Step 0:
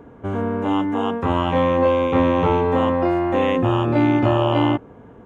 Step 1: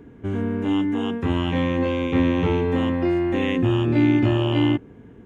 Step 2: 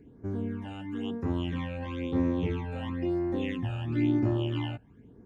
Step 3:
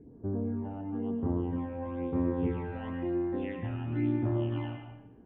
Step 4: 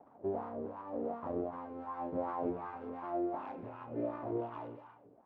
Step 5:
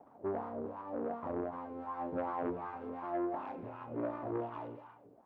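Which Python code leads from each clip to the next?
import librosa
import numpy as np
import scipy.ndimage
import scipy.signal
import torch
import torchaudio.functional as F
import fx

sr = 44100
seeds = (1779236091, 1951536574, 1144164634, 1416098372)

y1 = fx.band_shelf(x, sr, hz=830.0, db=-10.5, octaves=1.7)
y2 = fx.phaser_stages(y1, sr, stages=12, low_hz=330.0, high_hz=3100.0, hz=1.0, feedback_pct=25)
y2 = y2 * librosa.db_to_amplitude(-8.5)
y3 = fx.rider(y2, sr, range_db=4, speed_s=2.0)
y3 = fx.filter_sweep_lowpass(y3, sr, from_hz=800.0, to_hz=1800.0, start_s=1.51, end_s=2.75, q=1.0)
y3 = fx.rev_freeverb(y3, sr, rt60_s=0.93, hf_ratio=0.8, predelay_ms=60, drr_db=5.0)
y3 = y3 * librosa.db_to_amplitude(-3.5)
y4 = fx.lower_of_two(y3, sr, delay_ms=0.8)
y4 = fx.rider(y4, sr, range_db=10, speed_s=2.0)
y4 = fx.wah_lfo(y4, sr, hz=2.7, low_hz=420.0, high_hz=1100.0, q=3.4)
y4 = y4 * librosa.db_to_amplitude(6.0)
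y5 = fx.transformer_sat(y4, sr, knee_hz=650.0)
y5 = y5 * librosa.db_to_amplitude(1.0)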